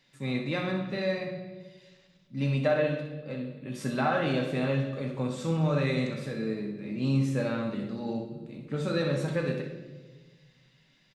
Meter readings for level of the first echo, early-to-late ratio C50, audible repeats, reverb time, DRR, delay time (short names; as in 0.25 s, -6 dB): -10.0 dB, 5.0 dB, 1, 1.4 s, 1.5 dB, 63 ms